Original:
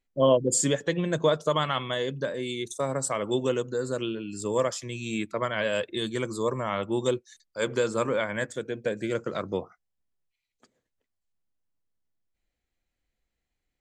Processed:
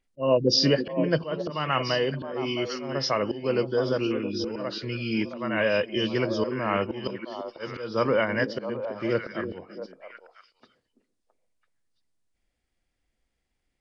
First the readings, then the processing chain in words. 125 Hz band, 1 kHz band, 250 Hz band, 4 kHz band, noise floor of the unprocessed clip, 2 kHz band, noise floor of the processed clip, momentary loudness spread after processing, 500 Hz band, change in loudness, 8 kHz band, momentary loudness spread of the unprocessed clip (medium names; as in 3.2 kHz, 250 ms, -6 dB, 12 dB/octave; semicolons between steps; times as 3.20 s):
+1.5 dB, +0.5 dB, +2.5 dB, +4.5 dB, -84 dBFS, +2.5 dB, -79 dBFS, 12 LU, +0.5 dB, +1.5 dB, under -10 dB, 8 LU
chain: knee-point frequency compression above 2.2 kHz 1.5:1; slow attack 278 ms; repeats whose band climbs or falls 333 ms, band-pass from 270 Hz, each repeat 1.4 oct, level -4 dB; trim +4 dB